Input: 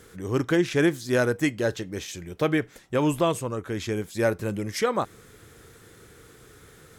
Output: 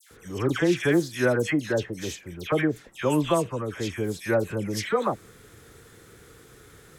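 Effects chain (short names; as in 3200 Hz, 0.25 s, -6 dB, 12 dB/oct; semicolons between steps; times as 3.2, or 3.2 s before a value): dispersion lows, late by 0.11 s, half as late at 1800 Hz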